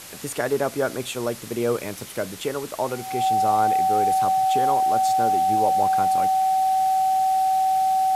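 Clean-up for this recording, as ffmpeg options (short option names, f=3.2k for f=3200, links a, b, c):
-af "bandreject=f=760:w=30,afwtdn=0.011"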